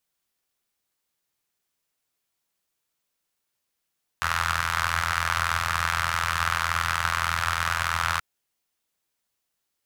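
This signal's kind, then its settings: four-cylinder engine model, steady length 3.98 s, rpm 2500, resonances 90/1300 Hz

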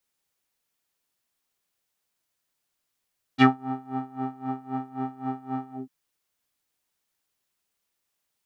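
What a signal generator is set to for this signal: synth patch with tremolo C4, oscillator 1 square, oscillator 2 saw, interval +7 st, detune 30 cents, oscillator 2 level -9.5 dB, sub -9 dB, noise -13 dB, filter lowpass, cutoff 280 Hz, Q 2.8, filter envelope 4 oct, filter decay 0.09 s, filter sustain 45%, attack 36 ms, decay 0.16 s, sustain -15.5 dB, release 0.16 s, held 2.34 s, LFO 3.8 Hz, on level 20.5 dB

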